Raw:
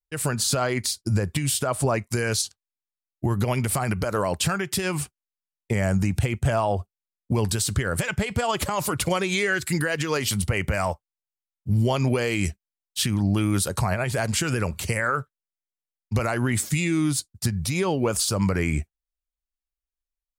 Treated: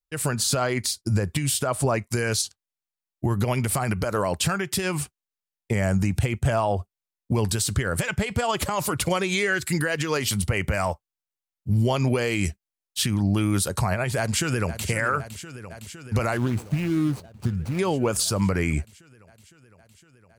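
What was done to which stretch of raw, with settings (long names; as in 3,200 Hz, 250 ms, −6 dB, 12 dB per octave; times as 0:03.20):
0:14.17–0:14.88: delay throw 510 ms, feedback 80%, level −12.5 dB
0:16.37–0:17.79: running median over 25 samples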